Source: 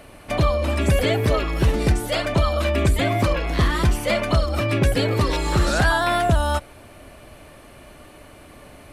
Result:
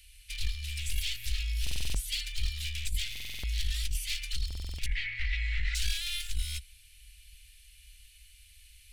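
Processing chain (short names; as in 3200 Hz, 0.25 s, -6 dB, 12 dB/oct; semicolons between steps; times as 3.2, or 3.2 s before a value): one-sided fold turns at -20 dBFS; inverse Chebyshev band-stop 170–950 Hz, stop band 60 dB; negative-ratio compressor -23 dBFS, ratio -0.5; 4.86–5.75 synth low-pass 2000 Hz, resonance Q 8.3; stuck buffer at 1.62/3.11/4.46, samples 2048, times 6; gain -4 dB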